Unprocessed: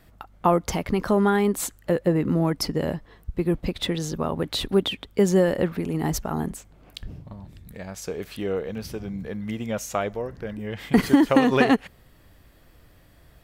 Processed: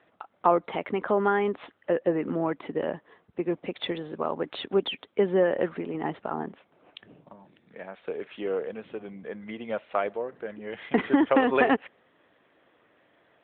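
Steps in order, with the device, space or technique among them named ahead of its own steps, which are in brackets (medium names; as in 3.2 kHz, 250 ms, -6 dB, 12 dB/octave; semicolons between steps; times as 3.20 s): 7.17–8.65 s: high-pass 110 Hz 24 dB/octave; telephone (band-pass 350–3400 Hz; AMR-NB 12.2 kbps 8 kHz)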